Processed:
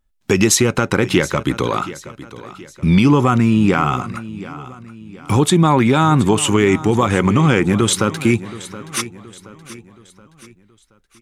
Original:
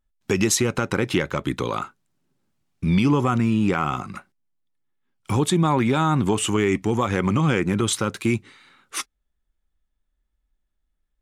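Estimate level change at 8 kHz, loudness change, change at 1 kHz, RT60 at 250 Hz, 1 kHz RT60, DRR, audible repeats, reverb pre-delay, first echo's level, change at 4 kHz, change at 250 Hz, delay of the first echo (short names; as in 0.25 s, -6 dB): +6.5 dB, +6.5 dB, +6.5 dB, none, none, none, 3, none, -16.5 dB, +6.5 dB, +6.5 dB, 0.724 s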